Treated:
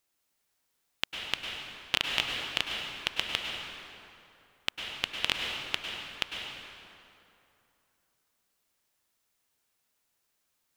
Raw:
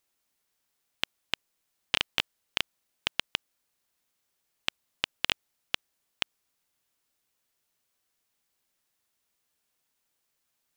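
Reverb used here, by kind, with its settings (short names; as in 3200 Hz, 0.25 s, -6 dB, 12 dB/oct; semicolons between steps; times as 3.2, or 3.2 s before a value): plate-style reverb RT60 2.8 s, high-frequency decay 0.65×, pre-delay 90 ms, DRR 0.5 dB; gain -1 dB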